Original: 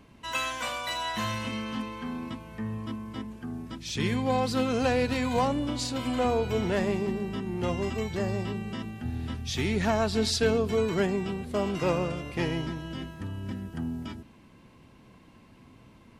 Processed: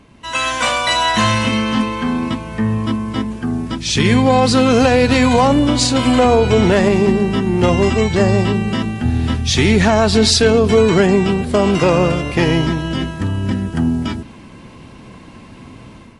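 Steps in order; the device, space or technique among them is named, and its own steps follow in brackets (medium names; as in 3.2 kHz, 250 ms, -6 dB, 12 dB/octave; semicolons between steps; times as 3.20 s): low-bitrate web radio (level rider gain up to 9 dB; peak limiter -10.5 dBFS, peak gain reduction 5.5 dB; trim +8 dB; MP3 48 kbps 24 kHz)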